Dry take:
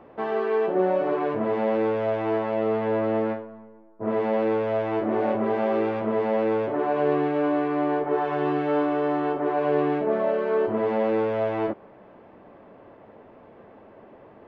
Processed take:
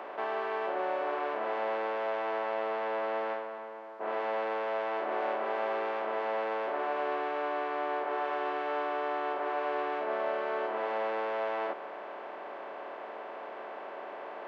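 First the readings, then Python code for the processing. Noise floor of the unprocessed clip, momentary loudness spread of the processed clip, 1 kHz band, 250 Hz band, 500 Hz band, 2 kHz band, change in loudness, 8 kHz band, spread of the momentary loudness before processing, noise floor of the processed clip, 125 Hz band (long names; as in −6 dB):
−50 dBFS, 10 LU, −3.5 dB, −18.0 dB, −9.5 dB, −1.5 dB, −9.0 dB, can't be measured, 3 LU, −43 dBFS, below −25 dB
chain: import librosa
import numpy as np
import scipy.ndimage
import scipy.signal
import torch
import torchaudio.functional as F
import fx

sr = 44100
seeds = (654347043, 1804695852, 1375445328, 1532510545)

y = fx.bin_compress(x, sr, power=0.4)
y = scipy.signal.sosfilt(scipy.signal.butter(2, 770.0, 'highpass', fs=sr, output='sos'), y)
y = y * librosa.db_to_amplitude(-6.0)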